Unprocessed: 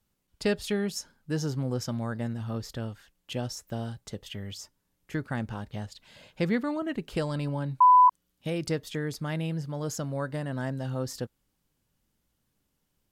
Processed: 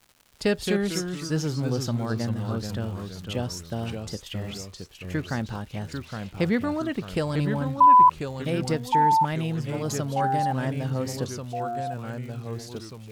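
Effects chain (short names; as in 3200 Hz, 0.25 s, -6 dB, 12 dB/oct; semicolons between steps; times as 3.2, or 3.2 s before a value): crackle 180/s -44 dBFS; echoes that change speed 0.164 s, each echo -2 st, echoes 3, each echo -6 dB; gain +3 dB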